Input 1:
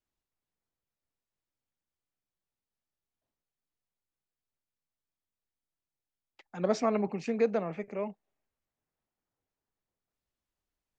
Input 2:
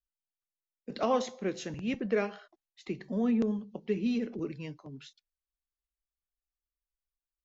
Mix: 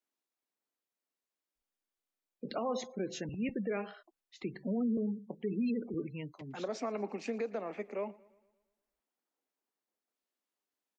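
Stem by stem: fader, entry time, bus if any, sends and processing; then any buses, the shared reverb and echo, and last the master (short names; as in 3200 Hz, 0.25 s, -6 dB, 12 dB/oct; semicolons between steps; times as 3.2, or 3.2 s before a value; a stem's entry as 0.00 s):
-1.0 dB, 0.00 s, no send, echo send -22.5 dB, steep high-pass 220 Hz; compressor, threshold -30 dBFS, peak gain reduction 9 dB
-1.0 dB, 1.55 s, no send, no echo send, spectral gate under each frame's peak -25 dB strong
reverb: off
echo: feedback echo 0.115 s, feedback 52%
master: limiter -26.5 dBFS, peak gain reduction 8.5 dB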